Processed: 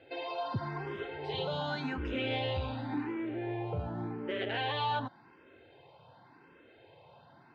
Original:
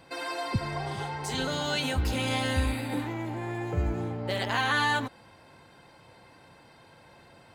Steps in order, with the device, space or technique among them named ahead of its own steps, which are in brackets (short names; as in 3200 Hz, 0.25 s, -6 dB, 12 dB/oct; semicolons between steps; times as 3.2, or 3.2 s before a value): barber-pole phaser into a guitar amplifier (endless phaser +0.89 Hz; soft clip -22 dBFS, distortion -20 dB; speaker cabinet 98–3400 Hz, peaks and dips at 200 Hz -7 dB, 400 Hz +5 dB, 1200 Hz -4 dB, 2000 Hz -5 dB)